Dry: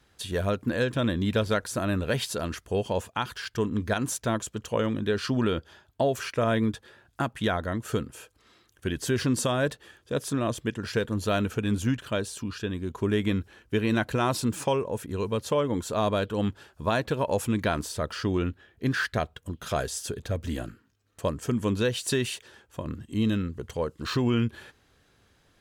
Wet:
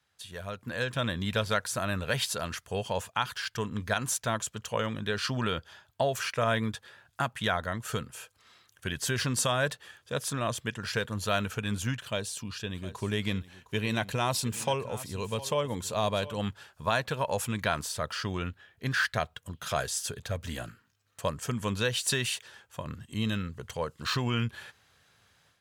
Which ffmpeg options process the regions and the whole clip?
-filter_complex "[0:a]asettb=1/sr,asplit=3[s0][s1][s2];[s0]atrim=end=12.034[s3];[s1]atrim=start=12.03:end=16.4,asetpts=PTS-STARTPTS,afade=t=in:d=0.004:c=qsin,afade=t=out:st=4.366:d=0.004:c=qsin,equalizer=f=1400:t=o:w=0.78:g=-6.5,aecho=1:1:711:0.158,atrim=end_sample=192717[s4];[s2]atrim=start=16.396[s5];[s3][s4]acrossfade=d=0.004:c1=hsin:c2=qsin[s6];[s6][s5]acrossfade=d=0.004:c1=qsin:c2=hsin,highpass=110,equalizer=f=310:w=1:g=-13.5,dynaudnorm=f=490:g=3:m=3.55,volume=0.376"

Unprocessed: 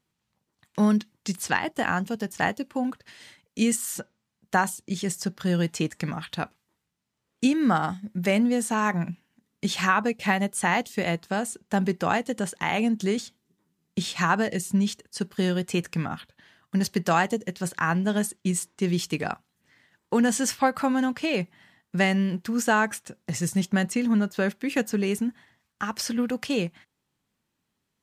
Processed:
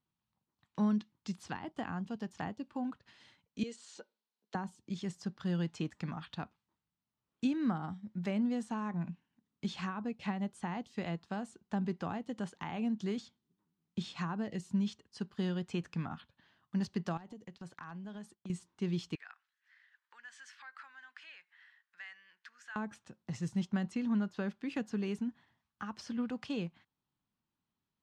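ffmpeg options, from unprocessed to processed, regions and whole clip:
-filter_complex "[0:a]asettb=1/sr,asplit=3[s0][s1][s2];[s0]atrim=end=3.634[s3];[s1]atrim=start=3.63:end=4.55,asetpts=PTS-STARTPTS,afade=t=in:d=0.004:c=qsin,afade=t=out:st=0.916:d=0.004:c=qsin,acompressor=threshold=0.0447:ratio=2:attack=3.2:release=140:knee=1:detection=peak,highpass=f=300:w=0.5412,highpass=f=300:w=1.3066,equalizer=f=310:t=q:w=4:g=-7,equalizer=f=440:t=q:w=4:g=8,equalizer=f=760:t=q:w=4:g=-4,equalizer=f=1200:t=q:w=4:g=-7,equalizer=f=1900:t=q:w=4:g=-3,equalizer=f=4200:t=q:w=4:g=6,lowpass=f=7800:w=0.5412,lowpass=f=7800:w=1.3066[s4];[s2]atrim=start=4.546[s5];[s3][s4]acrossfade=d=0.004:c1=hsin:c2=qsin[s6];[s6][s5]acrossfade=d=0.004:c1=qsin:c2=hsin,asettb=1/sr,asplit=3[s7][s8][s9];[s7]atrim=end=17.174[s10];[s8]atrim=start=17.17:end=18.5,asetpts=PTS-STARTPTS,afade=t=in:d=0.004:c=qsin,afade=t=out:st=1.326:d=0.004:c=qsin,agate=range=0.2:threshold=0.00708:ratio=16:release=100:detection=peak,aeval=exprs='0.237*(abs(mod(val(0)/0.237+3,4)-2)-1)':c=same,acompressor=threshold=0.02:ratio=5:attack=3.2:release=140:knee=1:detection=peak[s11];[s9]atrim=start=18.496[s12];[s10][s11]acrossfade=d=0.004:c1=hsin:c2=qsin[s13];[s13][s12]acrossfade=d=0.004:c1=qsin:c2=hsin,asettb=1/sr,asplit=3[s14][s15][s16];[s14]atrim=end=19.154[s17];[s15]atrim=start=19.15:end=22.76,asetpts=PTS-STARTPTS,afade=t=in:d=0.004:c=qsin,afade=t=out:st=3.606:d=0.004:c=qsin,acompressor=threshold=0.00708:ratio=2.5:attack=3.2:release=140:knee=1:detection=peak,highpass=f=1700:t=q:w=3.8[s18];[s16]atrim=start=22.756[s19];[s17][s18]acrossfade=d=0.004:c1=hsin:c2=qsin[s20];[s20][s19]acrossfade=d=0.004:c1=qsin:c2=hsin,equalizer=f=500:t=o:w=1:g=-6,equalizer=f=1000:t=o:w=1:g=3,equalizer=f=2000:t=o:w=1:g=-6,acrossover=split=490[s21][s22];[s22]acompressor=threshold=0.0282:ratio=10[s23];[s21][s23]amix=inputs=2:normalize=0,lowpass=4100,volume=0.376"

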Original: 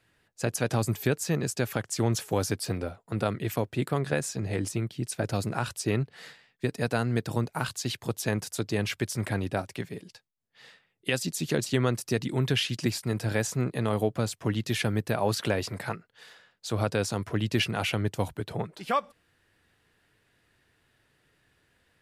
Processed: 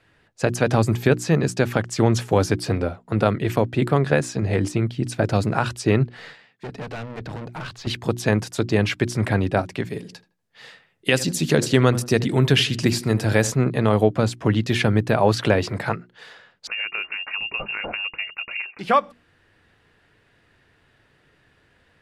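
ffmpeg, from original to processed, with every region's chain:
-filter_complex "[0:a]asettb=1/sr,asplit=3[s0][s1][s2];[s0]atrim=end=6.174[s3];[s1]atrim=start=6.17:end=7.87,asetpts=PTS-STARTPTS,afade=t=in:d=0.004:c=qsin,afade=t=out:st=1.696:d=0.004:c=qsin,highpass=100,acrossover=split=5100[s4][s5];[s5]acompressor=threshold=0.00126:ratio=4:attack=1:release=60[s6];[s4][s6]amix=inputs=2:normalize=0,aeval=exprs='(tanh(79.4*val(0)+0.25)-tanh(0.25))/79.4':c=same[s7];[s2]atrim=start=7.866[s8];[s3][s7]acrossfade=d=0.004:c1=hsin:c2=qsin[s9];[s9][s8]acrossfade=d=0.004:c1=qsin:c2=hsin,asettb=1/sr,asplit=3[s10][s11][s12];[s10]atrim=end=9.854[s13];[s11]atrim=start=9.85:end=13.52,asetpts=PTS-STARTPTS,afade=t=in:d=0.004:c=qsin,afade=t=out:st=3.666:d=0.004:c=qsin,highshelf=f=6700:g=11,asplit=2[s14][s15];[s15]adelay=80,lowpass=f=1600:p=1,volume=0.168,asplit=2[s16][s17];[s17]adelay=80,lowpass=f=1600:p=1,volume=0.36,asplit=2[s18][s19];[s19]adelay=80,lowpass=f=1600:p=1,volume=0.36[s20];[s14][s16][s18][s20]amix=inputs=4:normalize=0,atrim=end_sample=161847[s21];[s12]atrim=start=13.516[s22];[s13][s21]acrossfade=d=0.004:c1=hsin:c2=qsin[s23];[s23][s22]acrossfade=d=0.004:c1=qsin:c2=hsin,asettb=1/sr,asplit=3[s24][s25][s26];[s24]atrim=end=16.674[s27];[s25]atrim=start=16.67:end=18.79,asetpts=PTS-STARTPTS,afade=t=in:d=0.004:c=qsin,afade=t=out:st=2.116:d=0.004:c=qsin,acompressor=threshold=0.0224:ratio=3:attack=3.2:release=140:knee=1:detection=peak,lowpass=f=2500:t=q:w=0.5098,lowpass=f=2500:t=q:w=0.6013,lowpass=f=2500:t=q:w=0.9,lowpass=f=2500:t=q:w=2.563,afreqshift=-2900[s28];[s26]atrim=start=18.786[s29];[s27][s28]acrossfade=d=0.004:c1=hsin:c2=qsin[s30];[s30][s29]acrossfade=d=0.004:c1=qsin:c2=hsin,aemphasis=mode=reproduction:type=50fm,bandreject=f=60:t=h:w=6,bandreject=f=120:t=h:w=6,bandreject=f=180:t=h:w=6,bandreject=f=240:t=h:w=6,bandreject=f=300:t=h:w=6,bandreject=f=360:t=h:w=6,volume=2.82"

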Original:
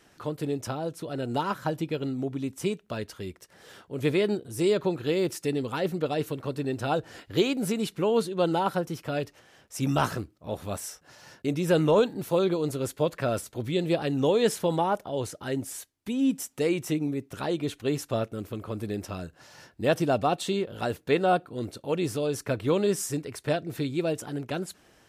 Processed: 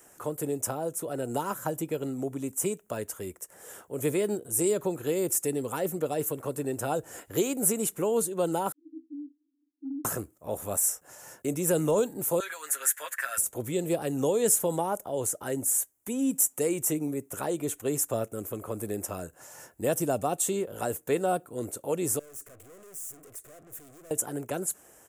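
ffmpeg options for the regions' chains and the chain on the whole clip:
-filter_complex "[0:a]asettb=1/sr,asplit=3[s0][s1][s2];[s0]atrim=end=8.724[s3];[s1]atrim=start=8.72:end=10.05,asetpts=PTS-STARTPTS,afade=t=in:d=0.004:c=qsin,afade=t=out:st=1.326:d=0.004:c=qsin,asuperpass=centerf=290:order=20:qfactor=4.2,acompressor=threshold=0.0224:ratio=2:attack=3.2:release=140:knee=1:detection=peak[s4];[s2]atrim=start=10.046[s5];[s3][s4]acrossfade=d=0.004:c1=hsin:c2=qsin[s6];[s6][s5]acrossfade=d=0.004:c1=qsin:c2=hsin,asettb=1/sr,asplit=3[s7][s8][s9];[s7]atrim=end=12.404[s10];[s8]atrim=start=12.4:end=13.38,asetpts=PTS-STARTPTS,afade=t=in:d=0.004:c=qsin,afade=t=out:st=0.976:d=0.004:c=qsin,highpass=f=1700:t=q:w=6.6,aecho=1:1:7.3:0.66,atrim=end_sample=43218[s11];[s9]atrim=start=13.376[s12];[s10][s11]acrossfade=d=0.004:c1=hsin:c2=qsin[s13];[s13][s12]acrossfade=d=0.004:c1=qsin:c2=hsin,asettb=1/sr,asplit=3[s14][s15][s16];[s14]atrim=end=22.194[s17];[s15]atrim=start=22.19:end=24.11,asetpts=PTS-STARTPTS,afade=t=in:d=0.004:c=qsin,afade=t=out:st=1.916:d=0.004:c=qsin,acompressor=threshold=0.0282:ratio=5:attack=3.2:release=140:knee=1:detection=peak,aeval=exprs='(tanh(355*val(0)+0.45)-tanh(0.45))/355':c=same,asuperstop=centerf=890:order=4:qfactor=3.6[s18];[s16]atrim=start=24.106[s19];[s17][s18]acrossfade=d=0.004:c1=hsin:c2=qsin[s20];[s20][s19]acrossfade=d=0.004:c1=qsin:c2=hsin,highshelf=f=10000:g=7.5,acrossover=split=310|3000[s21][s22][s23];[s22]acompressor=threshold=0.02:ratio=2[s24];[s21][s24][s23]amix=inputs=3:normalize=0,firequalizer=gain_entry='entry(180,0);entry(490,8);entry(4300,-7);entry(7100,15)':delay=0.05:min_phase=1,volume=0.596"

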